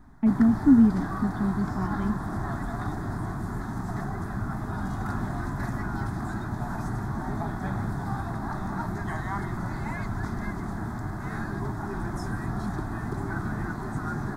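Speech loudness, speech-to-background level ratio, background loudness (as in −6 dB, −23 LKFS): −23.5 LKFS, 9.0 dB, −32.5 LKFS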